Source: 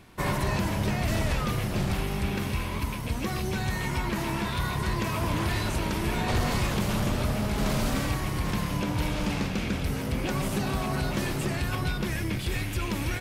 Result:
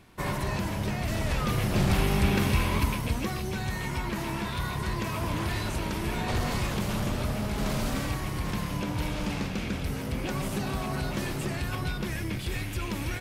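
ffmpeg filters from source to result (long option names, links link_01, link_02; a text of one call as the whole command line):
ffmpeg -i in.wav -af "volume=5dB,afade=type=in:start_time=1.18:duration=0.9:silence=0.398107,afade=type=out:start_time=2.76:duration=0.62:silence=0.421697" out.wav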